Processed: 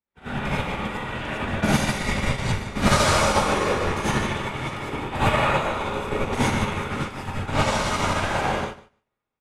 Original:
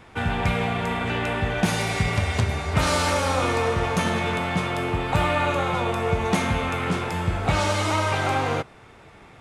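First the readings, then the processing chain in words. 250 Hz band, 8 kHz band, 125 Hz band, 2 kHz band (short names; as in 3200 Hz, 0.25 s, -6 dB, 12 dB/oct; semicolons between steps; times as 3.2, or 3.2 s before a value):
+0.5 dB, +2.0 dB, -2.0 dB, 0.0 dB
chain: notch 700 Hz, Q 12; whisperiser; feedback echo 0.149 s, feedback 35%, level -7 dB; non-linear reverb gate 0.13 s rising, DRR -7.5 dB; upward expander 2.5:1, over -41 dBFS; gain -3.5 dB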